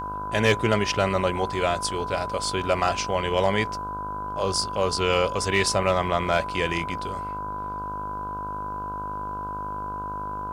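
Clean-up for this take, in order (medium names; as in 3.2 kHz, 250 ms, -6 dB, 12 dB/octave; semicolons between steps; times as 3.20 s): de-hum 50.9 Hz, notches 31; band-stop 1 kHz, Q 30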